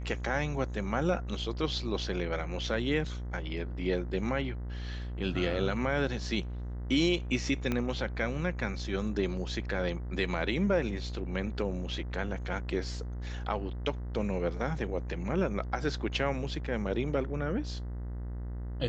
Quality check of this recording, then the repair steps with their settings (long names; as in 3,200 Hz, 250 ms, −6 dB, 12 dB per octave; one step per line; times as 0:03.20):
mains buzz 60 Hz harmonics 34 −37 dBFS
0:07.72: click −17 dBFS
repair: click removal
hum removal 60 Hz, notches 34